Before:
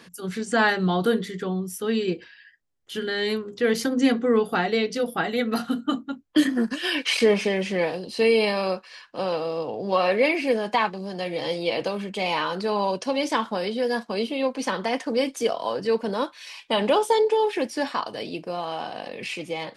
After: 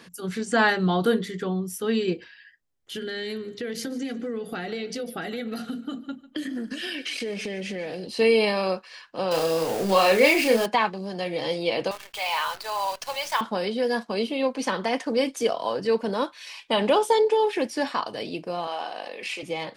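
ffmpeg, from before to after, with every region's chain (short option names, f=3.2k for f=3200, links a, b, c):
-filter_complex "[0:a]asettb=1/sr,asplit=3[a][b][c];[a]atrim=end=2.944[d];[b]atrim=start=2.94:end=8.07,asetpts=PTS-STARTPTS,afade=t=in:d=0.004:c=qsin,afade=t=out:st=5.126:d=0.004:c=qsin,equalizer=f=990:t=o:w=0.56:g=-11,acompressor=threshold=-28dB:ratio=6:attack=3.2:release=140:knee=1:detection=peak,aecho=1:1:147|294|441:0.126|0.0466|0.0172,atrim=end_sample=226233[e];[c]atrim=start=8.066[f];[d][e]acrossfade=d=0.004:c1=hsin:c2=qsin[g];[g][f]acrossfade=d=0.004:c1=qsin:c2=hsin,asettb=1/sr,asplit=3[h][i][j];[h]atrim=end=9.314[k];[i]atrim=start=9.31:end=10.66,asetpts=PTS-STARTPTS,afade=t=in:d=0.004:c=qsin,afade=t=out:st=1.346:d=0.004:c=qsin,aeval=exprs='val(0)+0.5*0.0251*sgn(val(0))':c=same,highshelf=f=4.1k:g=10,asplit=2[l][m];[m]adelay=31,volume=-5dB[n];[l][n]amix=inputs=2:normalize=0,atrim=end_sample=59535[o];[j]atrim=start=10.656[p];[k][o]acrossfade=d=0.004:c1=hsin:c2=qsin[q];[q][p]acrossfade=d=0.004:c1=qsin:c2=hsin,asettb=1/sr,asplit=3[r][s][t];[r]atrim=end=11.914[u];[s]atrim=start=11.91:end=13.41,asetpts=PTS-STARTPTS,afade=t=in:d=0.004:c=qsin,afade=t=out:st=1.496:d=0.004:c=qsin,highpass=f=700:w=0.5412,highpass=f=700:w=1.3066,acompressor=mode=upward:threshold=-43dB:ratio=2.5:attack=3.2:release=140:knee=2.83:detection=peak,acrusher=bits=7:dc=4:mix=0:aa=0.000001[v];[t]atrim=start=13.406[w];[u][v]acrossfade=d=0.004:c1=hsin:c2=qsin[x];[x][w]acrossfade=d=0.004:c1=qsin:c2=hsin,asettb=1/sr,asplit=3[y][z][aa];[y]atrim=end=18.674[ab];[z]atrim=start=18.67:end=19.43,asetpts=PTS-STARTPTS,afade=t=in:d=0.004:c=qsin,afade=t=out:st=0.756:d=0.004:c=qsin,highpass=410,asplit=2[ac][ad];[ad]adelay=36,volume=-14dB[ae];[ac][ae]amix=inputs=2:normalize=0,atrim=end_sample=33516[af];[aa]atrim=start=19.426[ag];[ab][af]acrossfade=d=0.004:c1=hsin:c2=qsin[ah];[ah][ag]acrossfade=d=0.004:c1=qsin:c2=hsin"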